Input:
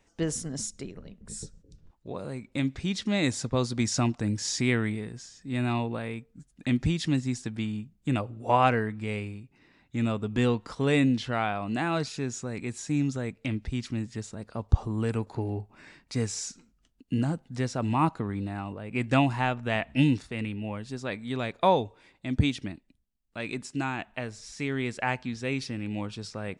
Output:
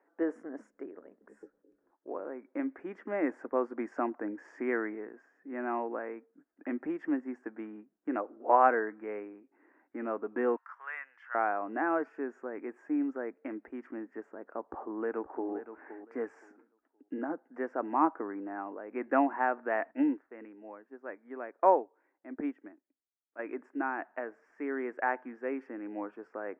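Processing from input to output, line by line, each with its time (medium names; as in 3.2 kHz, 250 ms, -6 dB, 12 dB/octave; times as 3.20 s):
10.56–11.35 s: high-pass 1.2 kHz 24 dB/octave
14.65–15.52 s: echo throw 520 ms, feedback 20%, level -11.5 dB
19.91–23.39 s: upward expansion, over -40 dBFS
whole clip: elliptic band-pass 300–1700 Hz, stop band 40 dB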